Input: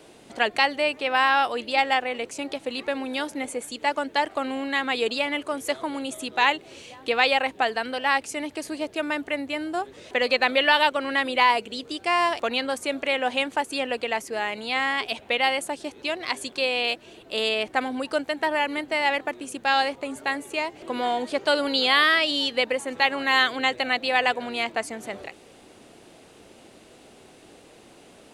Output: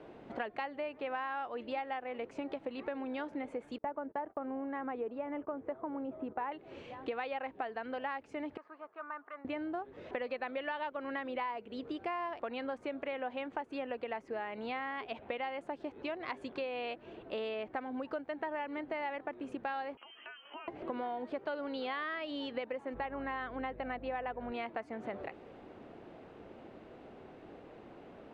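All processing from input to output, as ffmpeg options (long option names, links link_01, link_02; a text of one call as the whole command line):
ffmpeg -i in.wav -filter_complex "[0:a]asettb=1/sr,asplit=3[link_01][link_02][link_03];[link_01]atrim=end=3.784[link_04];[link_02]atrim=start=3.78:end=6.52,asetpts=PTS-STARTPTS,afade=type=in:duration=0.004:curve=qsin,afade=type=out:start_time=2.736:duration=0.004:curve=qsin,agate=range=-27dB:threshold=-42dB:ratio=16:release=100:detection=peak,lowpass=1200[link_05];[link_03]atrim=start=6.516[link_06];[link_04][link_05]acrossfade=duration=0.004:curve1=hsin:curve2=qsin[link_07];[link_07][link_06]acrossfade=duration=0.004:curve1=qsin:curve2=hsin,asettb=1/sr,asplit=3[link_08][link_09][link_10];[link_08]atrim=end=8.574[link_11];[link_09]atrim=start=8.57:end=9.45,asetpts=PTS-STARTPTS,afade=type=in:duration=0.004:curve=qsin,afade=type=out:start_time=0.876:duration=0.004:curve=qsin,asoftclip=type=hard:threshold=-22dB,bandpass=frequency=1200:width_type=q:width=4.9[link_12];[link_10]atrim=start=9.446[link_13];[link_11][link_12]acrossfade=duration=0.004:curve1=hsin:curve2=qsin[link_14];[link_14][link_13]acrossfade=duration=0.004:curve1=qsin:curve2=hsin,asettb=1/sr,asplit=3[link_15][link_16][link_17];[link_15]atrim=end=19.974[link_18];[link_16]atrim=start=19.97:end=20.68,asetpts=PTS-STARTPTS,afade=type=in:duration=0.004:curve=qsin,afade=type=out:start_time=0.706:duration=0.004:curve=qsin,lowpass=frequency=2900:width_type=q:width=0.5098,lowpass=frequency=2900:width_type=q:width=0.6013,lowpass=frequency=2900:width_type=q:width=0.9,lowpass=frequency=2900:width_type=q:width=2.563,afreqshift=-3400,acompressor=threshold=-39dB:ratio=10:attack=3.2:release=140:knee=1:detection=peak,highpass=frequency=280:width_type=q:width=2.3[link_19];[link_17]atrim=start=20.676[link_20];[link_18][link_19]acrossfade=duration=0.004:curve1=hsin:curve2=qsin[link_21];[link_21][link_20]acrossfade=duration=0.004:curve1=qsin:curve2=hsin,asettb=1/sr,asplit=3[link_22][link_23][link_24];[link_22]atrim=end=22.944[link_25];[link_23]atrim=start=22.94:end=24.52,asetpts=PTS-STARTPTS,afade=type=in:duration=0.004:curve=qsin,afade=type=out:start_time=1.576:duration=0.004:curve=qsin,lowpass=frequency=1500:poles=1,aeval=exprs='val(0)+0.00708*(sin(2*PI*50*n/s)+sin(2*PI*2*50*n/s)/2+sin(2*PI*3*50*n/s)/3+sin(2*PI*4*50*n/s)/4+sin(2*PI*5*50*n/s)/5)':channel_layout=same[link_26];[link_24]atrim=start=24.516[link_27];[link_25][link_26]acrossfade=duration=0.004:curve1=hsin:curve2=qsin[link_28];[link_28][link_27]acrossfade=duration=0.004:curve1=qsin:curve2=hsin,lowpass=1600,acompressor=threshold=-35dB:ratio=6,volume=-1dB" out.wav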